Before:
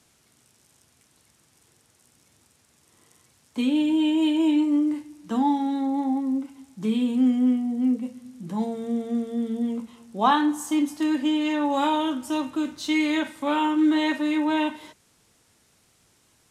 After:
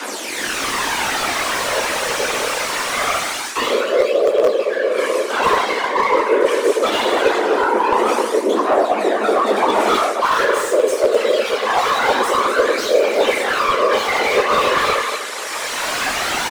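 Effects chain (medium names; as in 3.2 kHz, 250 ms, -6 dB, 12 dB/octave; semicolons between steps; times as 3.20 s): overdrive pedal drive 37 dB, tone 4.1 kHz, clips at -7.5 dBFS; phaser 0.23 Hz, delay 3.3 ms, feedback 68%; feedback delay 242 ms, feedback 38%, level -12 dB; reverse; compression 12:1, threshold -17 dBFS, peak gain reduction 13.5 dB; reverse; reverberation RT60 0.75 s, pre-delay 4 ms, DRR -6 dB; whisper effect; in parallel at -11 dB: integer overflow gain -2 dB; on the sum: frequency shift +200 Hz; level rider gain up to 11.5 dB; slew-rate limiter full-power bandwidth 420 Hz; trim -2 dB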